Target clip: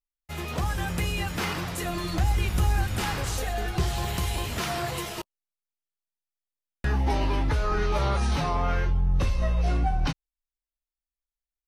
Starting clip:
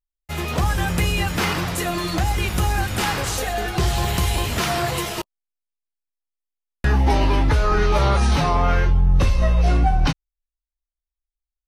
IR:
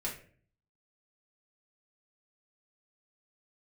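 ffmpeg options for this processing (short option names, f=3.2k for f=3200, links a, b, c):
-filter_complex "[0:a]asettb=1/sr,asplit=3[a][b][c];[a]atrim=end=1.824[d];[b]atrim=start=1.82:end=3.82,asetpts=PTS-STARTPTS,afade=t=in:d=0.004:c=qsin,afade=t=out:st=1.996:d=0.004:c=qsin,lowshelf=f=110:g=8.5[e];[c]atrim=start=3.816[f];[d][e]acrossfade=d=0.004:c1=hsin:c2=qsin[g];[g][f]acrossfade=d=0.004:c1=qsin:c2=hsin,volume=-7.5dB"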